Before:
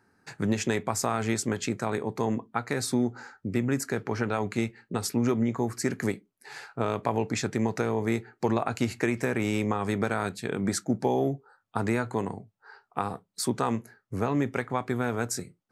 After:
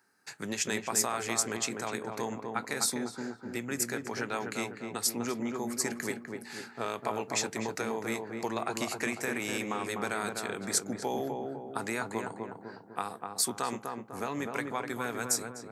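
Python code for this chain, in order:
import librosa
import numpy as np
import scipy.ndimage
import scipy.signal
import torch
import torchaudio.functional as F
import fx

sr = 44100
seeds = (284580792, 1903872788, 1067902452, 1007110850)

y = scipy.signal.sosfilt(scipy.signal.butter(2, 110.0, 'highpass', fs=sr, output='sos'), x)
y = fx.tilt_eq(y, sr, slope=3.0)
y = fx.echo_filtered(y, sr, ms=250, feedback_pct=54, hz=1200.0, wet_db=-3.0)
y = y * librosa.db_to_amplitude(-4.5)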